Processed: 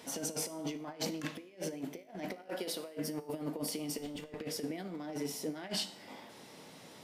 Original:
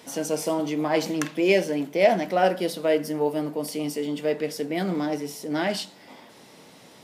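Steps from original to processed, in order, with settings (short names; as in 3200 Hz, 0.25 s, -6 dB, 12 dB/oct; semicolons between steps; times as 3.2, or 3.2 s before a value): 2.48–2.97 bell 130 Hz -14 dB 1.6 oct; negative-ratio compressor -30 dBFS, ratio -0.5; 3.98–4.41 tube stage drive 24 dB, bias 0.7; resonator 53 Hz, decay 0.61 s, harmonics all, mix 50%; gain -4.5 dB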